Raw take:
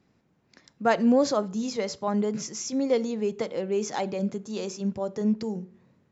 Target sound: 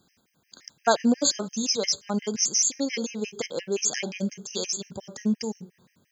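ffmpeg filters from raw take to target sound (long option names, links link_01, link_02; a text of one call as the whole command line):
ffmpeg -i in.wav -af "crystalizer=i=7:c=0,afftfilt=real='re*gt(sin(2*PI*5.7*pts/sr)*(1-2*mod(floor(b*sr/1024/1600),2)),0)':imag='im*gt(sin(2*PI*5.7*pts/sr)*(1-2*mod(floor(b*sr/1024/1600),2)),0)':win_size=1024:overlap=0.75" out.wav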